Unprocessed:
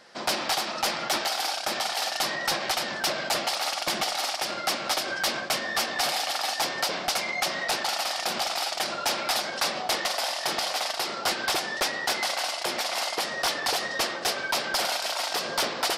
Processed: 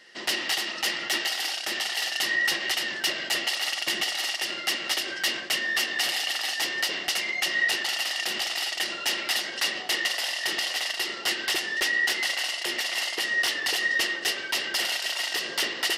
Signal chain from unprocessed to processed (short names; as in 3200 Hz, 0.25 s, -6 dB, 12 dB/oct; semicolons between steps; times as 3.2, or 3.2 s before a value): passive tone stack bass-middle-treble 5-5-5; small resonant body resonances 360/1900/2800 Hz, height 16 dB, ringing for 20 ms; gain +5 dB